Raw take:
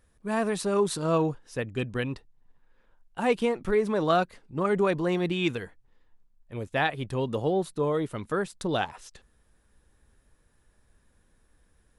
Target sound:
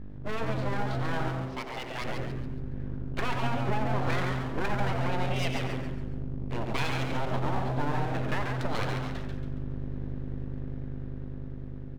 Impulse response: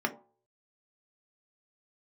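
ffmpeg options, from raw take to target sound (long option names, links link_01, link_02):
-filter_complex "[0:a]aeval=exprs='val(0)+0.01*(sin(2*PI*50*n/s)+sin(2*PI*2*50*n/s)/2+sin(2*PI*3*50*n/s)/3+sin(2*PI*4*50*n/s)/4+sin(2*PI*5*50*n/s)/5)':channel_layout=same,asplit=2[link_01][link_02];[link_02]adelay=89,lowpass=frequency=1700:poles=1,volume=-6dB,asplit=2[link_03][link_04];[link_04]adelay=89,lowpass=frequency=1700:poles=1,volume=0.3,asplit=2[link_05][link_06];[link_06]adelay=89,lowpass=frequency=1700:poles=1,volume=0.3,asplit=2[link_07][link_08];[link_08]adelay=89,lowpass=frequency=1700:poles=1,volume=0.3[link_09];[link_03][link_05][link_07][link_09]amix=inputs=4:normalize=0[link_10];[link_01][link_10]amix=inputs=2:normalize=0,dynaudnorm=framelen=590:gausssize=7:maxgain=7dB,lowshelf=frequency=130:gain=6,asplit=2[link_11][link_12];[1:a]atrim=start_sample=2205[link_13];[link_12][link_13]afir=irnorm=-1:irlink=0,volume=-11.5dB[link_14];[link_11][link_14]amix=inputs=2:normalize=0,acompressor=threshold=-28dB:ratio=4,lowpass=frequency=3600:width=0.5412,lowpass=frequency=3600:width=1.3066,aeval=exprs='abs(val(0))':channel_layout=same,asettb=1/sr,asplit=3[link_15][link_16][link_17];[link_15]atrim=end=1.284[link_18];[link_16]atrim=start=1.28:end=2.02,asetpts=PTS-STARTPTS,afade=type=in:duration=0.004:curve=qsin,afade=type=out:start_time=0.736:duration=0.004:curve=qsin,lowshelf=frequency=410:gain=-11[link_19];[link_17]atrim=start=2.016[link_20];[link_18][link_19]acrossfade=duration=0.004:curve1=hsin:curve2=qsin[link_21];[link_21][link_20]acrossfade=duration=0.004:curve1=qsin:curve2=hsin,asplit=6[link_22][link_23][link_24][link_25][link_26][link_27];[link_23]adelay=139,afreqshift=-130,volume=-4.5dB[link_28];[link_24]adelay=278,afreqshift=-260,volume=-12dB[link_29];[link_25]adelay=417,afreqshift=-390,volume=-19.6dB[link_30];[link_26]adelay=556,afreqshift=-520,volume=-27.1dB[link_31];[link_27]adelay=695,afreqshift=-650,volume=-34.6dB[link_32];[link_22][link_28][link_29][link_30][link_31][link_32]amix=inputs=6:normalize=0"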